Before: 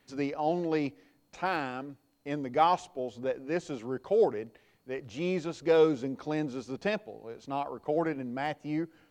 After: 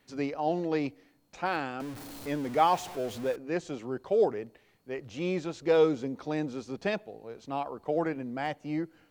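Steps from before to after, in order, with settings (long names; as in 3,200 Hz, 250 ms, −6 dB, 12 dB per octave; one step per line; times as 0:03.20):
0:01.80–0:03.36: converter with a step at zero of −38 dBFS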